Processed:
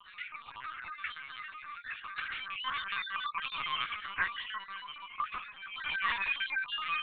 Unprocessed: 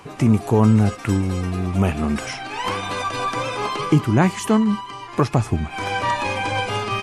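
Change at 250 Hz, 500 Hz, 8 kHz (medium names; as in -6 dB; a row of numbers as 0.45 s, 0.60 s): under -40 dB, -37.5 dB, under -40 dB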